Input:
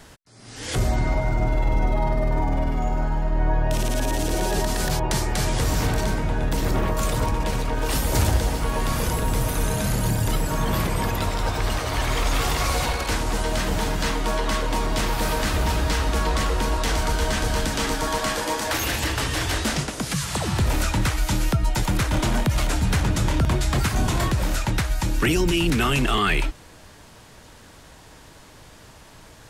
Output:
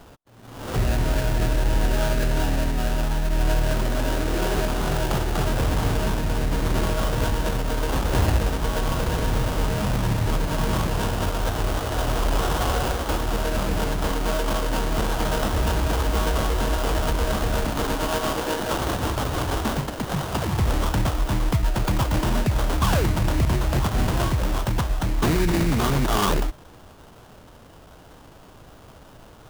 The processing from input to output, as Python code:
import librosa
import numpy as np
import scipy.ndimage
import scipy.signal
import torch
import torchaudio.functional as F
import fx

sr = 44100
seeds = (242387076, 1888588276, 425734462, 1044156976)

y = fx.spec_paint(x, sr, seeds[0], shape='fall', start_s=22.81, length_s=0.26, low_hz=300.0, high_hz=1700.0, level_db=-25.0)
y = fx.sample_hold(y, sr, seeds[1], rate_hz=2600.0, jitter_pct=20)
y = fx.formant_shift(y, sr, semitones=-3)